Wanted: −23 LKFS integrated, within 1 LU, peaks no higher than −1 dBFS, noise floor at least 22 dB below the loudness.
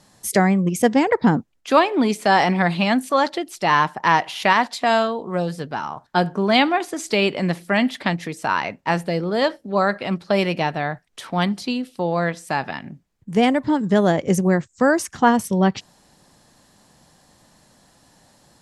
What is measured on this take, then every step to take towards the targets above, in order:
integrated loudness −20.5 LKFS; sample peak −2.0 dBFS; target loudness −23.0 LKFS
→ level −2.5 dB

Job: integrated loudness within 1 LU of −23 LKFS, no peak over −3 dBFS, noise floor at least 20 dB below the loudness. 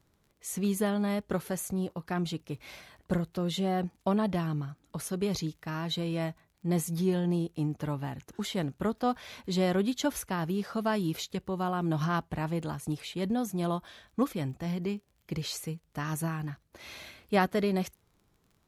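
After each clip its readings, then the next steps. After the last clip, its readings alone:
crackle rate 29 per second; integrated loudness −32.0 LKFS; sample peak −14.0 dBFS; target loudness −23.0 LKFS
→ click removal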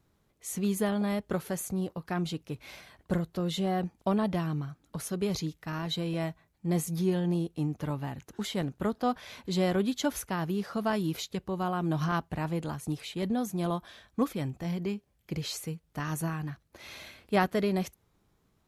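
crackle rate 0.11 per second; integrated loudness −32.0 LKFS; sample peak −14.0 dBFS; target loudness −23.0 LKFS
→ level +9 dB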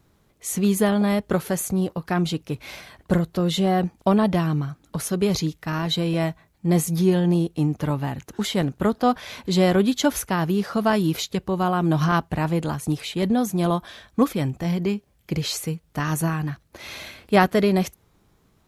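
integrated loudness −23.0 LKFS; sample peak −5.0 dBFS; background noise floor −63 dBFS

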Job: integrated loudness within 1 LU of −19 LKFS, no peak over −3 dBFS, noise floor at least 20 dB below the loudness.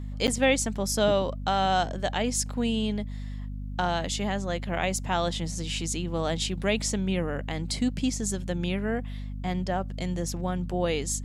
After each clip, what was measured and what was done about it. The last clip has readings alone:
number of dropouts 1; longest dropout 8.7 ms; mains hum 50 Hz; hum harmonics up to 250 Hz; level of the hum −32 dBFS; integrated loudness −28.5 LKFS; sample peak −11.0 dBFS; target loudness −19.0 LKFS
→ repair the gap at 0:00.27, 8.7 ms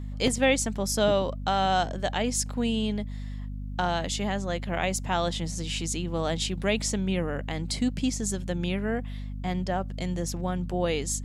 number of dropouts 0; mains hum 50 Hz; hum harmonics up to 250 Hz; level of the hum −32 dBFS
→ mains-hum notches 50/100/150/200/250 Hz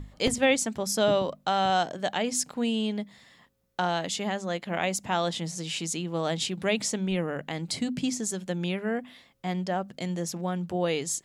mains hum none found; integrated loudness −28.5 LKFS; sample peak −10.5 dBFS; target loudness −19.0 LKFS
→ level +9.5 dB
brickwall limiter −3 dBFS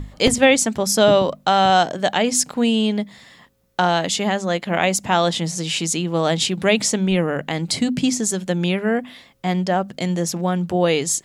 integrated loudness −19.5 LKFS; sample peak −3.0 dBFS; background noise floor −52 dBFS

